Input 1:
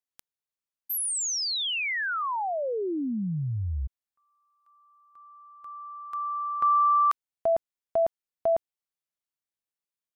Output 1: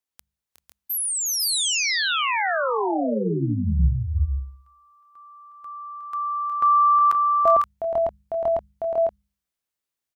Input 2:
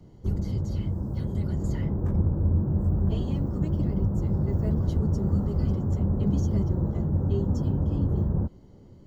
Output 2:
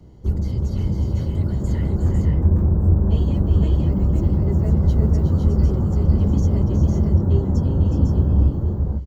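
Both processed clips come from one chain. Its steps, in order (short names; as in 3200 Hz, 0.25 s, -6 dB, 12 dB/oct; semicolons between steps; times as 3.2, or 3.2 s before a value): bell 67 Hz +13.5 dB 0.2 oct; de-hum 50.15 Hz, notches 4; on a send: tapped delay 0.363/0.389/0.501/0.525 s -7/-12/-4.5/-7.5 dB; on the sum: gain +3.5 dB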